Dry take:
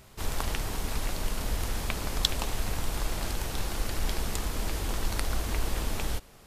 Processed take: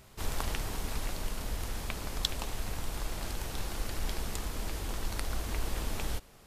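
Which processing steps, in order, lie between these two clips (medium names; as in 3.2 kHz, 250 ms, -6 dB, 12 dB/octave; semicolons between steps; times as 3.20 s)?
gain riding 2 s; trim -5 dB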